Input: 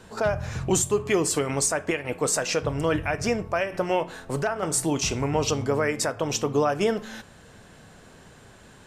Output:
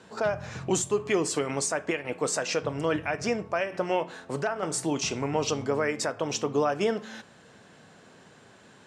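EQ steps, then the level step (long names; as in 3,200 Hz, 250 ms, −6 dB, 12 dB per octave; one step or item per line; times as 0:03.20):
band-pass filter 150–7,500 Hz
−2.5 dB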